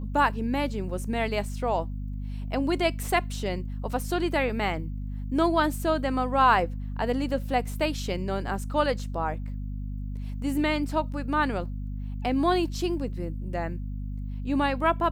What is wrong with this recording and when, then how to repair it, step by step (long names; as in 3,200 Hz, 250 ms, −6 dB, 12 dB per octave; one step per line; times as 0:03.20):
mains hum 50 Hz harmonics 5 −33 dBFS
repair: hum removal 50 Hz, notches 5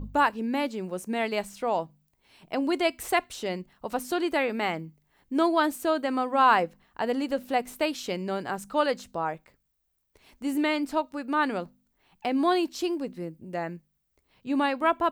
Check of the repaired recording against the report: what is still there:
none of them is left